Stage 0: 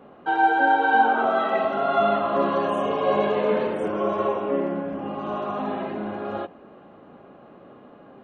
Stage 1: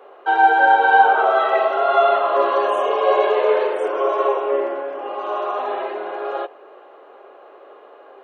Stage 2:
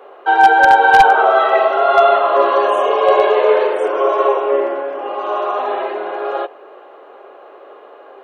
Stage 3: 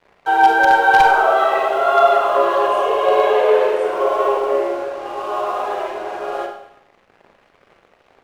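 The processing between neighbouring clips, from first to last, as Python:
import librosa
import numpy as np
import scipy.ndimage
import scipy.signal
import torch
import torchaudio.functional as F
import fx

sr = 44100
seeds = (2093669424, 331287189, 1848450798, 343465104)

y1 = scipy.signal.sosfilt(scipy.signal.ellip(4, 1.0, 70, 390.0, 'highpass', fs=sr, output='sos'), x)
y1 = y1 * librosa.db_to_amplitude(6.0)
y2 = 10.0 ** (-5.5 / 20.0) * (np.abs((y1 / 10.0 ** (-5.5 / 20.0) + 3.0) % 4.0 - 2.0) - 1.0)
y2 = y2 * librosa.db_to_amplitude(4.5)
y3 = np.sign(y2) * np.maximum(np.abs(y2) - 10.0 ** (-36.5 / 20.0), 0.0)
y3 = fx.rev_schroeder(y3, sr, rt60_s=0.73, comb_ms=33, drr_db=3.5)
y3 = y3 * librosa.db_to_amplitude(-3.5)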